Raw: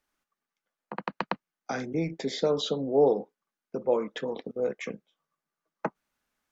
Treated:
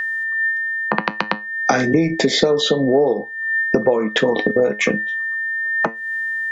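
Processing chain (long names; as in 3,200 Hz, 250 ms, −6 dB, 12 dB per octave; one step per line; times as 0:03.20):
steady tone 1,800 Hz −45 dBFS
flanger 0.32 Hz, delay 8.6 ms, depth 1 ms, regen +71%
downward compressor 16 to 1, threshold −43 dBFS, peak gain reduction 22 dB
boost into a limiter +31.5 dB
level −1 dB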